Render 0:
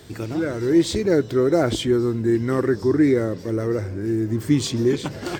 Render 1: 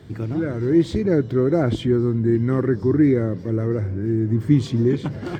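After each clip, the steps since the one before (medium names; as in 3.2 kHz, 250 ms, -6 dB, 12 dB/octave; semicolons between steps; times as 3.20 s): high-pass 170 Hz 6 dB/octave; tone controls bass +14 dB, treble -12 dB; band-stop 2.6 kHz, Q 17; trim -3 dB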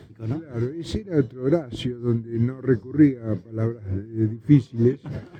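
logarithmic tremolo 3.3 Hz, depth 22 dB; trim +2 dB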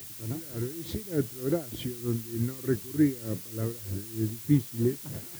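added noise blue -36 dBFS; trim -7.5 dB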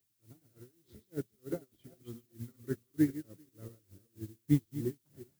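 backward echo that repeats 194 ms, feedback 40%, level -6 dB; upward expansion 2.5:1, over -40 dBFS; trim -2.5 dB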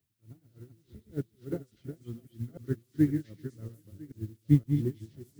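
chunks repeated in reverse 515 ms, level -7.5 dB; tone controls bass +8 dB, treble -6 dB; repeats whose band climbs or falls 248 ms, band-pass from 3.9 kHz, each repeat 0.7 oct, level -4 dB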